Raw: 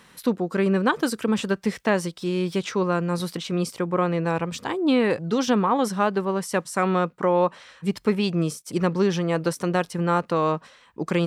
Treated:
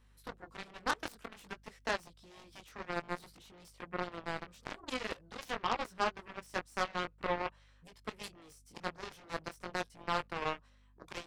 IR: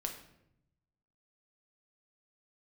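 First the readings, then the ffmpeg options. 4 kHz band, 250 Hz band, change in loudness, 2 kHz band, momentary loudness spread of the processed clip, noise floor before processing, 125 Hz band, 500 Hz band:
-10.0 dB, -24.0 dB, -15.5 dB, -9.5 dB, 15 LU, -54 dBFS, -24.0 dB, -19.0 dB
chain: -filter_complex "[0:a]acrossover=split=470|3900[a][b][c];[a]acompressor=threshold=-32dB:ratio=6[d];[d][b][c]amix=inputs=3:normalize=0,aeval=exprs='val(0)+0.00708*(sin(2*PI*50*n/s)+sin(2*PI*2*50*n/s)/2+sin(2*PI*3*50*n/s)/3+sin(2*PI*4*50*n/s)/4+sin(2*PI*5*50*n/s)/5)':c=same,flanger=delay=17:depth=6.3:speed=0.51,aeval=exprs='0.251*(cos(1*acos(clip(val(0)/0.251,-1,1)))-cos(1*PI/2))+0.0141*(cos(5*acos(clip(val(0)/0.251,-1,1)))-cos(5*PI/2))+0.0562*(cos(7*acos(clip(val(0)/0.251,-1,1)))-cos(7*PI/2))':c=same,volume=-7dB"

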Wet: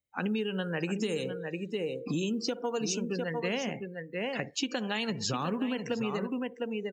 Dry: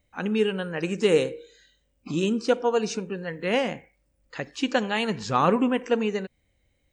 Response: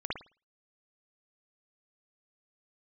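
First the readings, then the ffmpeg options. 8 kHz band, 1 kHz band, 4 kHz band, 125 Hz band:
+1.5 dB, -10.0 dB, -3.0 dB, -3.5 dB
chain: -filter_complex "[0:a]asplit=2[a][b];[b]alimiter=limit=-17dB:level=0:latency=1:release=205,volume=0dB[c];[a][c]amix=inputs=2:normalize=0,acrusher=bits=9:mode=log:mix=0:aa=0.000001,highpass=67,aecho=1:1:703:0.376,asplit=2[d][e];[1:a]atrim=start_sample=2205[f];[e][f]afir=irnorm=-1:irlink=0,volume=-23dB[g];[d][g]amix=inputs=2:normalize=0,afftdn=nr=23:nf=-35,acrossover=split=280|3000[h][i][j];[i]acompressor=threshold=-27dB:ratio=2[k];[h][k][j]amix=inputs=3:normalize=0,highshelf=f=5.1k:g=11,acompressor=threshold=-23dB:ratio=6,volume=-5dB"

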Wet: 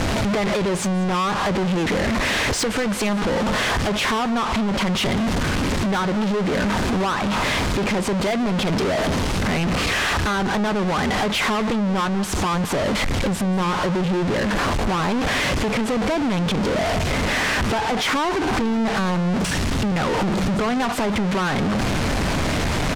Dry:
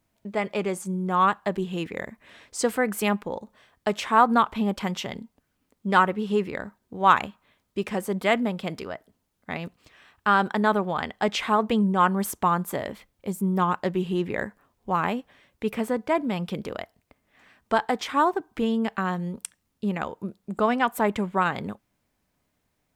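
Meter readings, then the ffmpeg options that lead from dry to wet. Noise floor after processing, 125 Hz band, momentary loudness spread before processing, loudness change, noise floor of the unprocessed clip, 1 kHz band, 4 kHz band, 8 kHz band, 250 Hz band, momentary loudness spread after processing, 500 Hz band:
-23 dBFS, +10.0 dB, 15 LU, +4.5 dB, -75 dBFS, +1.0 dB, +12.0 dB, +10.5 dB, +6.5 dB, 2 LU, +4.5 dB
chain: -filter_complex "[0:a]aeval=exprs='val(0)+0.5*0.0944*sgn(val(0))':c=same,lowpass=6.2k,lowshelf=f=130:g=5,asplit=2[a][b];[b]acontrast=88,volume=0.5dB[c];[a][c]amix=inputs=2:normalize=0,highshelf=f=4.1k:g=-5.5,acompressor=threshold=-14dB:ratio=6,asoftclip=type=tanh:threshold=-19dB,asplit=2[d][e];[e]adelay=186.6,volume=-17dB,highshelf=f=4k:g=-4.2[f];[d][f]amix=inputs=2:normalize=0"

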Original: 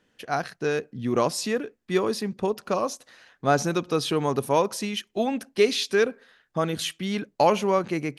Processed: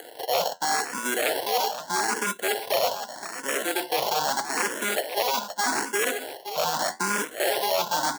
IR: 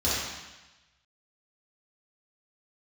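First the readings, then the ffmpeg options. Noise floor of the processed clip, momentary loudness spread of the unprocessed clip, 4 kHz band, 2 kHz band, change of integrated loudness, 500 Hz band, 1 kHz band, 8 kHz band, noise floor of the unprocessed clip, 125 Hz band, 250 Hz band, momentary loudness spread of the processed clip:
-45 dBFS, 8 LU, +3.5 dB, +5.0 dB, 0.0 dB, -4.0 dB, +2.0 dB, +7.0 dB, -71 dBFS, -15.0 dB, -9.5 dB, 3 LU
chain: -filter_complex "[0:a]lowpass=3.5k,areverse,acompressor=threshold=-31dB:ratio=12,areverse,acrusher=samples=36:mix=1:aa=0.000001,flanger=delay=8.5:depth=6.6:regen=-68:speed=0.4:shape=sinusoidal,equalizer=f=2.3k:t=o:w=0.65:g=-13,aeval=exprs='0.0188*(abs(mod(val(0)/0.0188+3,4)-2)-1)':c=same,aecho=1:1:520:0.188,acrusher=bits=6:mode=log:mix=0:aa=0.000001,acompressor=mode=upward:threshold=-52dB:ratio=2.5,highpass=730,alimiter=level_in=34.5dB:limit=-1dB:release=50:level=0:latency=1,asplit=2[a][b];[b]afreqshift=0.81[c];[a][c]amix=inputs=2:normalize=1,volume=-5.5dB"

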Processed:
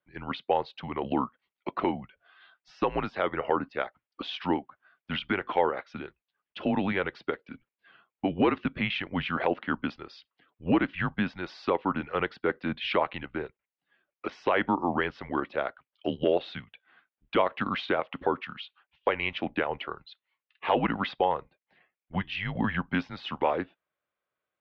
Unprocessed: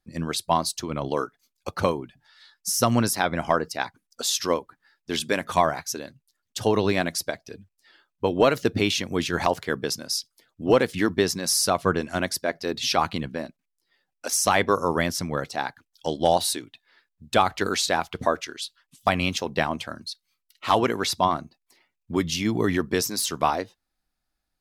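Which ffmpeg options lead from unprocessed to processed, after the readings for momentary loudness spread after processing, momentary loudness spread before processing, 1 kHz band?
13 LU, 13 LU, -5.0 dB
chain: -af "alimiter=limit=-11.5dB:level=0:latency=1:release=209,highpass=f=390:t=q:w=0.5412,highpass=f=390:t=q:w=1.307,lowpass=f=3.2k:t=q:w=0.5176,lowpass=f=3.2k:t=q:w=0.7071,lowpass=f=3.2k:t=q:w=1.932,afreqshift=-190"

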